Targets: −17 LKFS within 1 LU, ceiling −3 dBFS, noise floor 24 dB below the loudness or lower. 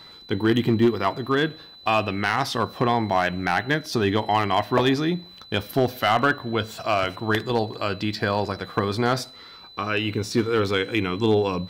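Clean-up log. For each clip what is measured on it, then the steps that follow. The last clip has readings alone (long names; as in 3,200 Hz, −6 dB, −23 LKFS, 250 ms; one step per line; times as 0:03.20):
share of clipped samples 0.3%; peaks flattened at −11.5 dBFS; interfering tone 4,000 Hz; level of the tone −44 dBFS; integrated loudness −23.5 LKFS; sample peak −11.5 dBFS; target loudness −17.0 LKFS
→ clipped peaks rebuilt −11.5 dBFS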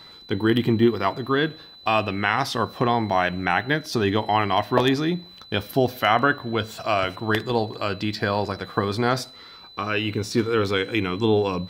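share of clipped samples 0.0%; interfering tone 4,000 Hz; level of the tone −44 dBFS
→ notch filter 4,000 Hz, Q 30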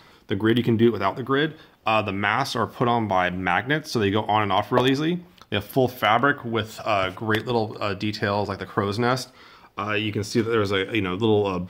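interfering tone none found; integrated loudness −23.5 LKFS; sample peak −4.5 dBFS; target loudness −17.0 LKFS
→ level +6.5 dB
brickwall limiter −3 dBFS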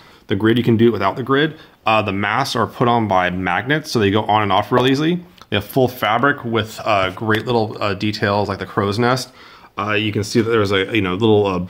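integrated loudness −17.5 LKFS; sample peak −3.0 dBFS; background noise floor −46 dBFS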